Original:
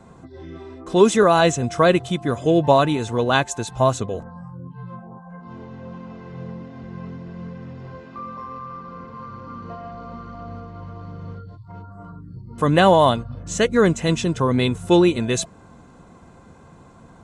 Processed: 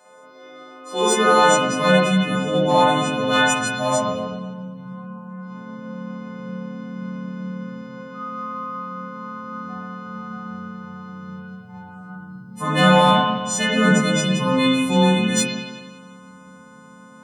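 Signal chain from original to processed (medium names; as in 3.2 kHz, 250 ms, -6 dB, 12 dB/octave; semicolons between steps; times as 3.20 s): partials quantised in pitch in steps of 3 st; peaking EQ 360 Hz -15 dB 0.83 oct; in parallel at -11 dB: wavefolder -13 dBFS; on the sum: high-pass sweep 450 Hz -> 190 Hz, 0.68–1.82 s; spring tank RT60 1.3 s, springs 42/59 ms, chirp 75 ms, DRR -6 dB; trim -7.5 dB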